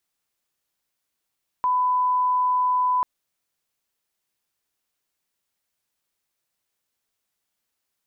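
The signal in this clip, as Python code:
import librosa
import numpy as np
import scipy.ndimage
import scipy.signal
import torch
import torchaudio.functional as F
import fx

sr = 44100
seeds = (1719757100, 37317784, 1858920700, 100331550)

y = fx.lineup_tone(sr, length_s=1.39, level_db=-18.0)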